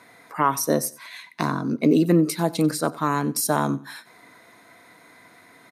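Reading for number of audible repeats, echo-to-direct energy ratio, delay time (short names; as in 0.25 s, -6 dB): 2, -19.5 dB, 92 ms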